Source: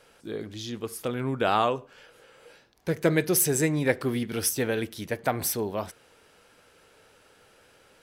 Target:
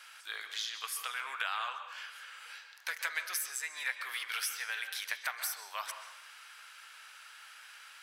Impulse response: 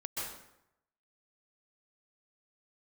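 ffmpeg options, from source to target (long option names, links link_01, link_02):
-filter_complex "[0:a]highpass=frequency=1200:width=0.5412,highpass=frequency=1200:width=1.3066,acompressor=threshold=-42dB:ratio=6,asplit=2[link_01][link_02];[1:a]atrim=start_sample=2205,lowpass=6000[link_03];[link_02][link_03]afir=irnorm=-1:irlink=0,volume=-6.5dB[link_04];[link_01][link_04]amix=inputs=2:normalize=0,volume=6.5dB"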